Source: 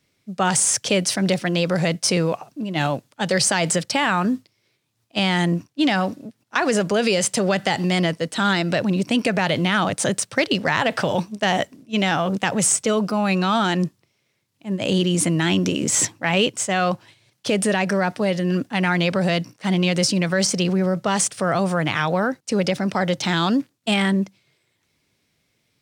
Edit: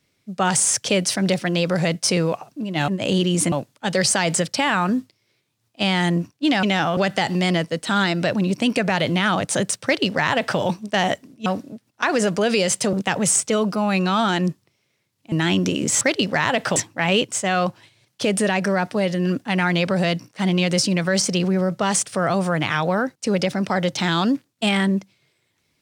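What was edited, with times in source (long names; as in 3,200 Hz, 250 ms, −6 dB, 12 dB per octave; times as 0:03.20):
0:05.99–0:07.46: swap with 0:11.95–0:12.29
0:10.33–0:11.08: duplicate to 0:16.01
0:14.68–0:15.32: move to 0:02.88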